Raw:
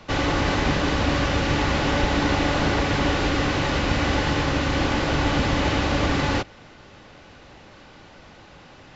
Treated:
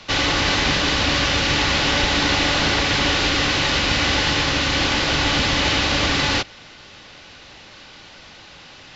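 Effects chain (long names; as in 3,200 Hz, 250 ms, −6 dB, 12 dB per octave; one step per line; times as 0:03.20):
parametric band 4,300 Hz +13 dB 2.6 octaves
level −1.5 dB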